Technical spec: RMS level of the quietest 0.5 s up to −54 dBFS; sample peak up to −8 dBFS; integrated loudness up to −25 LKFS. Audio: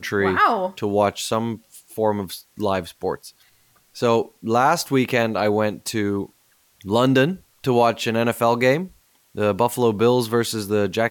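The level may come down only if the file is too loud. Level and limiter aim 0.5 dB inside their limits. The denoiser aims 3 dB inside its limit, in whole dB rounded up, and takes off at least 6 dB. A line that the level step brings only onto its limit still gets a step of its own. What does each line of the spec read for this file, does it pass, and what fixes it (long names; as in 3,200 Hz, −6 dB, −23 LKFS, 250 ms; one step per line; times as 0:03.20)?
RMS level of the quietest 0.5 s −60 dBFS: in spec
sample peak −5.5 dBFS: out of spec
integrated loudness −21.0 LKFS: out of spec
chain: level −4.5 dB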